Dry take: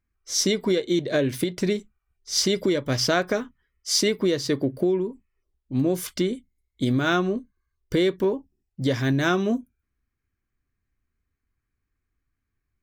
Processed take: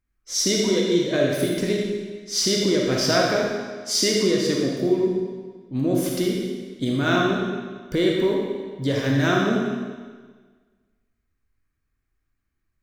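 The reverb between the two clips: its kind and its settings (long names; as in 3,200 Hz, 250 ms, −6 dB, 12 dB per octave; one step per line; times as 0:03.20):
comb and all-pass reverb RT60 1.5 s, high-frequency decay 0.95×, pre-delay 0 ms, DRR −2 dB
level −1.5 dB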